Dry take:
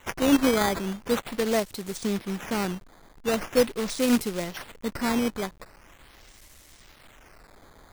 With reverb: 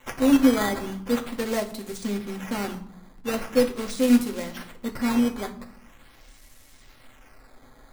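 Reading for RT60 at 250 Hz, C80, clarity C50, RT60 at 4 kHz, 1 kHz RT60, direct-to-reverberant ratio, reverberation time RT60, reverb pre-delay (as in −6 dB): 1.1 s, 16.5 dB, 12.5 dB, 0.45 s, 0.70 s, 1.5 dB, 0.75 s, 4 ms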